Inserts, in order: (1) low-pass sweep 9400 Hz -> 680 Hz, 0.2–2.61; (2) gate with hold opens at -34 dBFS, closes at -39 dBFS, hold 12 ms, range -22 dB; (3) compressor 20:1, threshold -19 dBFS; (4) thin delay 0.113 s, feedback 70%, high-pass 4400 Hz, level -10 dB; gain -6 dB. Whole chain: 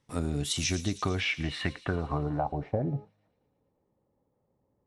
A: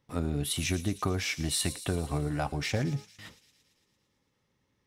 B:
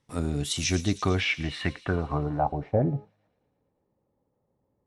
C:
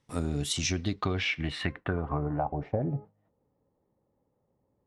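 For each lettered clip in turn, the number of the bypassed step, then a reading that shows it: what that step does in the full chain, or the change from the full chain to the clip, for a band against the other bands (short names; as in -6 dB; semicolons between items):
1, 8 kHz band +3.5 dB; 3, mean gain reduction 2.5 dB; 4, echo-to-direct -22.0 dB to none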